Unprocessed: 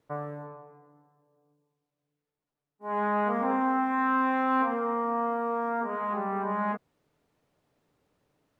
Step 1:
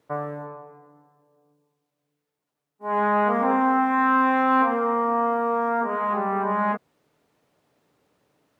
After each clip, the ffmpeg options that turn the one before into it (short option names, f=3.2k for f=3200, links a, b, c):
-af "highpass=f=160:p=1,volume=6.5dB"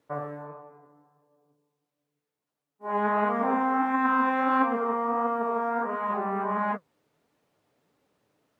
-af "flanger=delay=3.4:depth=6.6:regen=67:speed=1.5:shape=sinusoidal"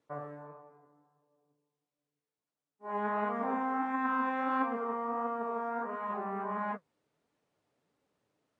-af "volume=-7.5dB" -ar 22050 -c:a aac -b:a 96k